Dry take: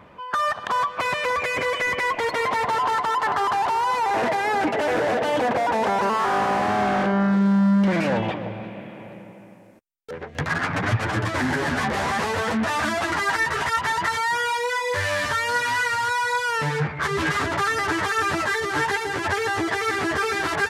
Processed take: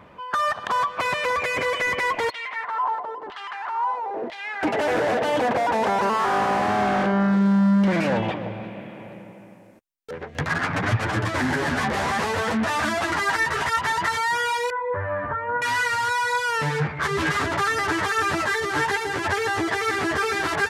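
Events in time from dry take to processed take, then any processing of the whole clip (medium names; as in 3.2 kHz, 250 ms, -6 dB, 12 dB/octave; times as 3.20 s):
2.30–4.63 s: LFO band-pass saw down 1 Hz 320–3600 Hz
14.70–15.62 s: low-pass 1.4 kHz 24 dB/octave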